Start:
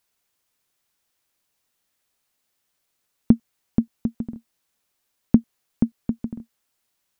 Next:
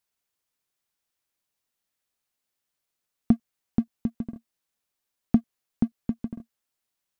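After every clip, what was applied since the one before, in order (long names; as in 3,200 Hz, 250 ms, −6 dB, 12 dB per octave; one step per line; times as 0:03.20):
leveller curve on the samples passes 1
level −6.5 dB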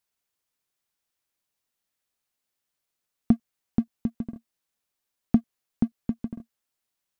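no processing that can be heard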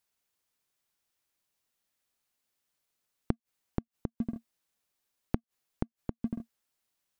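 gate with flip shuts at −19 dBFS, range −29 dB
level +1 dB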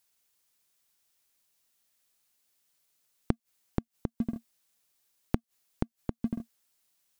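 high-shelf EQ 3,200 Hz +7.5 dB
level +2 dB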